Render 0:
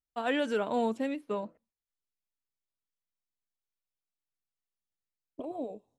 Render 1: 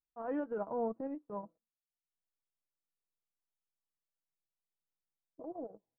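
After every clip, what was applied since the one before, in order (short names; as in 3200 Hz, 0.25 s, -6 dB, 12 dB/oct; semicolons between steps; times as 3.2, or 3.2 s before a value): transient shaper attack -8 dB, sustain -12 dB; LPF 1200 Hz 24 dB/oct; comb 6.1 ms, depth 40%; gain -4.5 dB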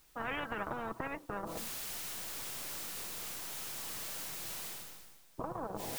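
reverse; upward compressor, threshold -51 dBFS; reverse; spectral compressor 10:1; gain +7 dB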